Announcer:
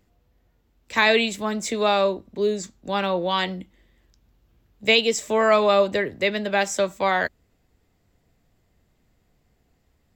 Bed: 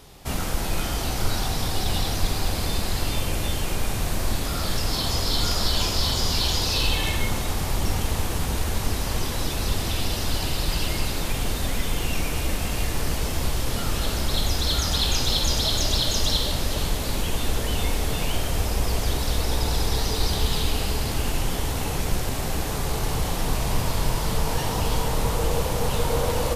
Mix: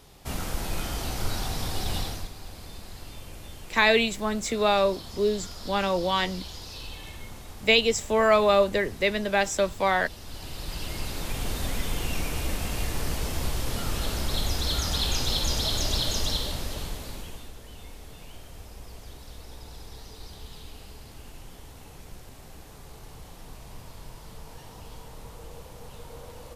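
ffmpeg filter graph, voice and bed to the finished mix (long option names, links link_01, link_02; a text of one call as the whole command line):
ffmpeg -i stem1.wav -i stem2.wav -filter_complex "[0:a]adelay=2800,volume=-2dB[link_01];[1:a]volume=8dB,afade=type=out:start_time=1.98:duration=0.32:silence=0.251189,afade=type=in:start_time=10.23:duration=1.37:silence=0.223872,afade=type=out:start_time=16.09:duration=1.43:silence=0.158489[link_02];[link_01][link_02]amix=inputs=2:normalize=0" out.wav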